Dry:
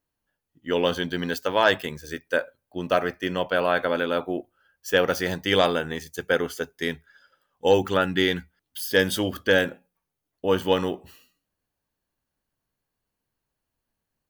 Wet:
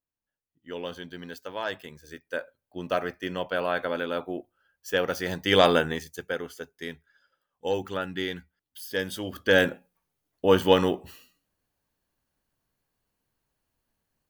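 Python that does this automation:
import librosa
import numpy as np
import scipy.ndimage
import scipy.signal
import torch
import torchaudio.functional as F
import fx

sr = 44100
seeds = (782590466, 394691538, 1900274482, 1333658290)

y = fx.gain(x, sr, db=fx.line((1.75, -12.5), (2.8, -5.0), (5.19, -5.0), (5.78, 4.0), (6.35, -9.0), (9.21, -9.0), (9.65, 2.5)))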